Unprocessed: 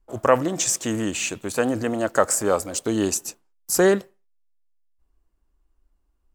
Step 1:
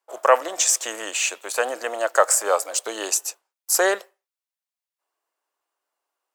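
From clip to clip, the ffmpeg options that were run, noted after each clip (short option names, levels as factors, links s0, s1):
-af "highpass=f=540:w=0.5412,highpass=f=540:w=1.3066,volume=1.5"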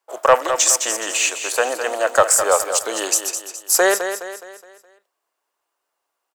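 -filter_complex "[0:a]acontrast=32,asplit=2[s0][s1];[s1]aecho=0:1:209|418|627|836|1045:0.355|0.153|0.0656|0.0282|0.0121[s2];[s0][s2]amix=inputs=2:normalize=0,volume=0.891"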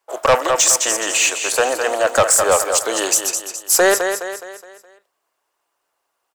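-af "asoftclip=type=tanh:threshold=0.251,volume=1.68" -ar 44100 -c:a nellymoser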